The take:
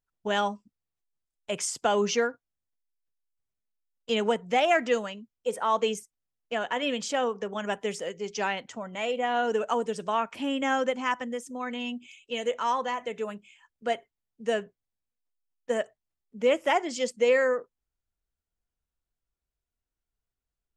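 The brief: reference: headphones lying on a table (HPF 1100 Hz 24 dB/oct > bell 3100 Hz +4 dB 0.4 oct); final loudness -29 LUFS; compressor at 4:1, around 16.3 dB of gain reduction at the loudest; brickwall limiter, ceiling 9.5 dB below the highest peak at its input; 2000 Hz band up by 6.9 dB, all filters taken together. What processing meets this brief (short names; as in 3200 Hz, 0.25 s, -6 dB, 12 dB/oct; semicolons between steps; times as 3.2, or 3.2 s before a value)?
bell 2000 Hz +8 dB; compressor 4:1, threshold -37 dBFS; limiter -30.5 dBFS; HPF 1100 Hz 24 dB/oct; bell 3100 Hz +4 dB 0.4 oct; gain +14.5 dB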